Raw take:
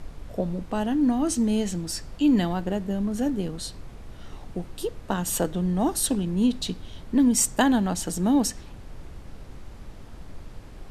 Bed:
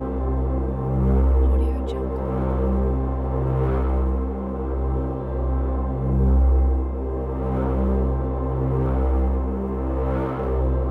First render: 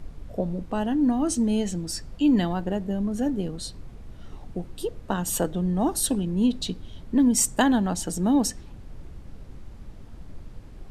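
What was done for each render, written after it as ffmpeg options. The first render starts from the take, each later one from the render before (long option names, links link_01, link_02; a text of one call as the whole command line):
ffmpeg -i in.wav -af "afftdn=noise_reduction=6:noise_floor=-43" out.wav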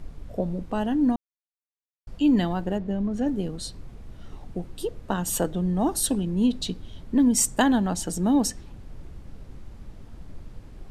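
ffmpeg -i in.wav -filter_complex "[0:a]asettb=1/sr,asplit=3[link_01][link_02][link_03];[link_01]atrim=end=2.784[link_04];[link_02]atrim=start=2.78:end=3.28,asetpts=PTS-STARTPTS,afade=type=in:duration=0.004:curve=qsin,afade=type=out:start_time=0.496:duration=0.004:curve=qsin,adynamicsmooth=sensitivity=7.5:basefreq=4300[link_05];[link_03]atrim=start=3.276[link_06];[link_04][link_05]acrossfade=duration=0.004:curve1=hsin:curve2=qsin[link_07];[link_07][link_06]acrossfade=duration=0.004:curve1=qsin:curve2=hsin,asplit=3[link_08][link_09][link_10];[link_08]atrim=end=1.16,asetpts=PTS-STARTPTS,afade=type=out:start_time=1.156:duration=0.004:curve=hsin[link_11];[link_09]atrim=start=1.16:end=2.07,asetpts=PTS-STARTPTS,volume=0[link_12];[link_10]atrim=start=2.07,asetpts=PTS-STARTPTS,afade=type=in:duration=0.004:curve=hsin[link_13];[link_11][link_12][link_13]concat=n=3:v=0:a=1" out.wav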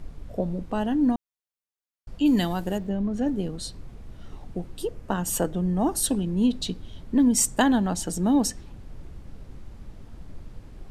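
ffmpeg -i in.wav -filter_complex "[0:a]asplit=3[link_01][link_02][link_03];[link_01]afade=type=out:start_time=2.25:duration=0.02[link_04];[link_02]aemphasis=mode=production:type=75fm,afade=type=in:start_time=2.25:duration=0.02,afade=type=out:start_time=2.88:duration=0.02[link_05];[link_03]afade=type=in:start_time=2.88:duration=0.02[link_06];[link_04][link_05][link_06]amix=inputs=3:normalize=0,asettb=1/sr,asplit=3[link_07][link_08][link_09];[link_07]atrim=end=4.824[link_10];[link_08]atrim=start=4.82:end=6.03,asetpts=PTS-STARTPTS,afade=type=in:duration=0.004:curve=qsin,afade=type=out:start_time=1.206:duration=0.004:curve=qsin,equalizer=frequency=3800:width_type=o:width=0.36:gain=-5.5[link_11];[link_09]atrim=start=6.026[link_12];[link_10][link_11]acrossfade=duration=0.004:curve1=hsin:curve2=qsin[link_13];[link_13][link_12]acrossfade=duration=0.004:curve1=qsin:curve2=hsin" out.wav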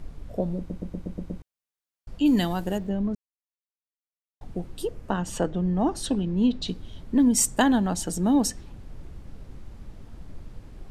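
ffmpeg -i in.wav -filter_complex "[0:a]asettb=1/sr,asplit=3[link_01][link_02][link_03];[link_01]atrim=end=5.104[link_04];[link_02]atrim=start=5.1:end=6.68,asetpts=PTS-STARTPTS,afade=type=in:duration=0.004:curve=qsin,afade=type=out:start_time=1.576:duration=0.004:curve=qsin,lowpass=5000[link_05];[link_03]atrim=start=6.676[link_06];[link_04][link_05]acrossfade=duration=0.004:curve1=hsin:curve2=qsin[link_07];[link_07][link_06]acrossfade=duration=0.004:curve1=qsin:curve2=hsin,asplit=10[link_08][link_09][link_10][link_11][link_12][link_13][link_14][link_15][link_16][link_17];[link_08]atrim=end=0.702[link_18];[link_09]atrim=start=0.578:end=0.702[link_19];[link_10]atrim=start=0.578:end=0.702[link_20];[link_11]atrim=start=0.578:end=0.702[link_21];[link_12]atrim=start=0.578:end=0.702[link_22];[link_13]atrim=start=0.578:end=0.702[link_23];[link_14]atrim=start=0.578:end=0.702[link_24];[link_15]atrim=start=1.418:end=3.15,asetpts=PTS-STARTPTS,afade=type=out:start_time=1.728:duration=0.004:curve=hsin[link_25];[link_16]atrim=start=3.15:end=4.41,asetpts=PTS-STARTPTS,volume=0[link_26];[link_17]atrim=start=4.41,asetpts=PTS-STARTPTS,afade=type=in:duration=0.004:curve=hsin[link_27];[link_18][link_19]acrossfade=duration=0.004:curve1=hsin:curve2=hsin[link_28];[link_28][link_20]acrossfade=duration=0.004:curve1=hsin:curve2=hsin[link_29];[link_29][link_21]acrossfade=duration=0.004:curve1=hsin:curve2=hsin[link_30];[link_30][link_22]acrossfade=duration=0.004:curve1=hsin:curve2=hsin[link_31];[link_31][link_23]acrossfade=duration=0.004:curve1=hsin:curve2=hsin[link_32];[link_32][link_24]acrossfade=duration=0.004:curve1=hsin:curve2=hsin[link_33];[link_25][link_26][link_27]concat=n=3:v=0:a=1[link_34];[link_33][link_34]acrossfade=duration=0.004:curve1=hsin:curve2=hsin" out.wav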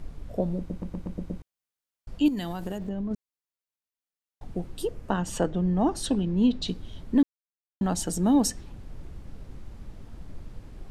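ffmpeg -i in.wav -filter_complex "[0:a]asettb=1/sr,asplit=3[link_01][link_02][link_03];[link_01]atrim=end=0.724[link_04];[link_02]atrim=start=0.72:end=1.17,asetpts=PTS-STARTPTS,afade=type=in:duration=0.004:curve=qsin,afade=type=out:start_time=0.446:duration=0.004:curve=qsin,volume=26.5dB,asoftclip=hard,volume=-26.5dB[link_05];[link_03]atrim=start=1.166[link_06];[link_04][link_05]acrossfade=duration=0.004:curve1=hsin:curve2=qsin[link_07];[link_07][link_06]acrossfade=duration=0.004:curve1=qsin:curve2=hsin,asettb=1/sr,asplit=3[link_08][link_09][link_10];[link_08]atrim=end=2.284[link_11];[link_09]atrim=start=2.28:end=3.11,asetpts=PTS-STARTPTS,afade=type=in:duration=0.004:curve=qsin,afade=type=out:start_time=0.826:duration=0.004:curve=qsin,acompressor=threshold=-27dB:ratio=10:attack=3.2:release=140:knee=1:detection=peak[link_12];[link_10]atrim=start=3.106[link_13];[link_11][link_12]acrossfade=duration=0.004:curve1=hsin:curve2=qsin[link_14];[link_14][link_13]acrossfade=duration=0.004:curve1=qsin:curve2=hsin,asplit=3[link_15][link_16][link_17];[link_15]atrim=end=7.23,asetpts=PTS-STARTPTS,afade=type=out:start_time=7.226:duration=0.004:curve=hsin[link_18];[link_16]atrim=start=7.23:end=7.81,asetpts=PTS-STARTPTS,volume=0[link_19];[link_17]atrim=start=7.81,asetpts=PTS-STARTPTS,afade=type=in:duration=0.004:curve=hsin[link_20];[link_18][link_19][link_20]concat=n=3:v=0:a=1" out.wav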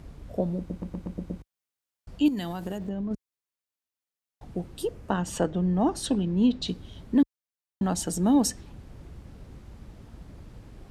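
ffmpeg -i in.wav -af "highpass=41" out.wav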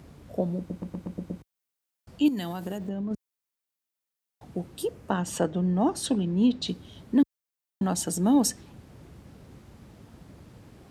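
ffmpeg -i in.wav -af "highpass=96,highshelf=frequency=11000:gain=6" out.wav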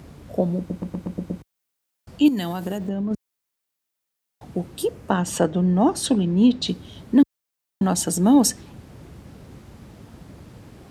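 ffmpeg -i in.wav -af "volume=6dB" out.wav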